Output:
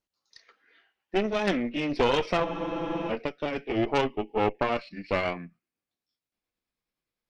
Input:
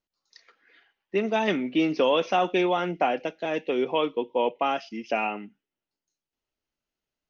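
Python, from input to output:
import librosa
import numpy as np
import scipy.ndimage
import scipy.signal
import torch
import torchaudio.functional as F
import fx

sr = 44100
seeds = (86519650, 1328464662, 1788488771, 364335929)

p1 = fx.pitch_glide(x, sr, semitones=-4.0, runs='starting unshifted')
p2 = fx.cheby_harmonics(p1, sr, harmonics=(4,), levels_db=(-10,), full_scale_db=-11.5)
p3 = 10.0 ** (-25.5 / 20.0) * np.tanh(p2 / 10.0 ** (-25.5 / 20.0))
p4 = p2 + F.gain(torch.from_numpy(p3), -7.5).numpy()
p5 = fx.spec_freeze(p4, sr, seeds[0], at_s=2.45, hold_s=0.64)
y = F.gain(torch.from_numpy(p5), -3.0).numpy()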